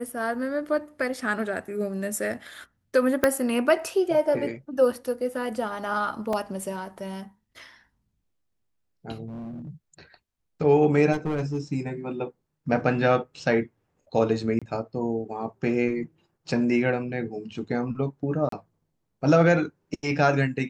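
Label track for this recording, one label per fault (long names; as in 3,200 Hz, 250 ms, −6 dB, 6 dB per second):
3.240000	3.240000	click −6 dBFS
6.330000	6.330000	drop-out 3 ms
9.270000	9.700000	clipping −34 dBFS
11.120000	11.600000	clipping −22.5 dBFS
14.590000	14.620000	drop-out 26 ms
18.490000	18.520000	drop-out 33 ms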